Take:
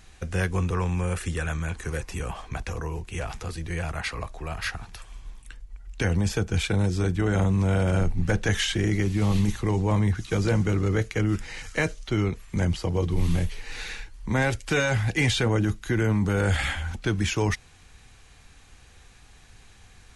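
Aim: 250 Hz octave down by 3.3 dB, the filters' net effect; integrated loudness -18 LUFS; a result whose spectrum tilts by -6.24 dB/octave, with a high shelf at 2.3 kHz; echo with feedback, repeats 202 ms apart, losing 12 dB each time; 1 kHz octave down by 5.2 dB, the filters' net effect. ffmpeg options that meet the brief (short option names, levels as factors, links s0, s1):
-af "equalizer=f=250:t=o:g=-4.5,equalizer=f=1000:t=o:g=-5.5,highshelf=f=2300:g=-6,aecho=1:1:202|404|606:0.251|0.0628|0.0157,volume=3.16"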